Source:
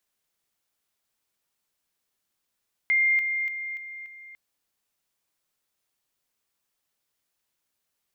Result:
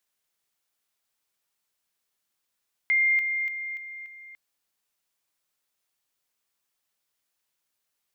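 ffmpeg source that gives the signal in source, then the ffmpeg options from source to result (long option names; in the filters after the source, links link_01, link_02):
-f lavfi -i "aevalsrc='pow(10,(-18.5-6*floor(t/0.29))/20)*sin(2*PI*2110*t)':duration=1.45:sample_rate=44100"
-af "lowshelf=frequency=500:gain=-5"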